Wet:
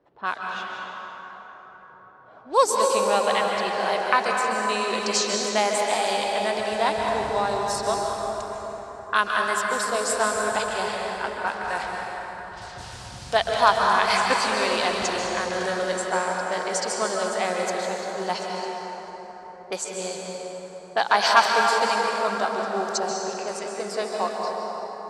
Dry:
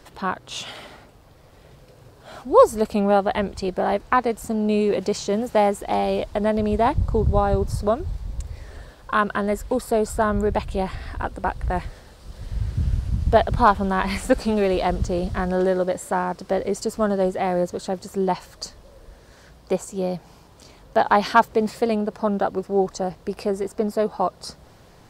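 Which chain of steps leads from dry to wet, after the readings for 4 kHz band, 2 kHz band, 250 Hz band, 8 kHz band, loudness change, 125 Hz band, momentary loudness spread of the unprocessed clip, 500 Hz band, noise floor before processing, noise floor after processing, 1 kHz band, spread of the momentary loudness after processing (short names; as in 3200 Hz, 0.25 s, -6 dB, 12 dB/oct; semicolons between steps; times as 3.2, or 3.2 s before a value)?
+8.5 dB, +5.5 dB, -10.5 dB, +8.5 dB, -1.5 dB, -15.0 dB, 12 LU, -3.5 dB, -50 dBFS, -44 dBFS, +0.5 dB, 16 LU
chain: low-pass opened by the level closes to 420 Hz, open at -19 dBFS; weighting filter ITU-R 468; plate-style reverb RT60 4.8 s, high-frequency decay 0.45×, pre-delay 0.12 s, DRR -1 dB; gain -2.5 dB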